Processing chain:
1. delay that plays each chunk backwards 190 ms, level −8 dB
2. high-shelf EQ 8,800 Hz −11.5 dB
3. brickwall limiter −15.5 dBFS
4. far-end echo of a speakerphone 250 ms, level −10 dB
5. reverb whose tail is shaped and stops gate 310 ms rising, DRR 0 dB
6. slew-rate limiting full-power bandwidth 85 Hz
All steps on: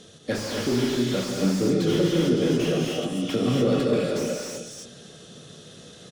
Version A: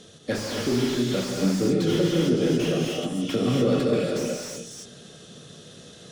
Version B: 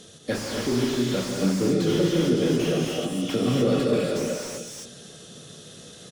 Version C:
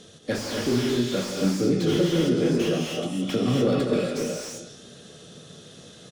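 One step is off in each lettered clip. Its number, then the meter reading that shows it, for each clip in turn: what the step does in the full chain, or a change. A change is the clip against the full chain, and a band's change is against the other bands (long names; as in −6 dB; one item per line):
4, change in momentary loudness spread +2 LU
2, change in momentary loudness spread +8 LU
1, change in momentary loudness spread −4 LU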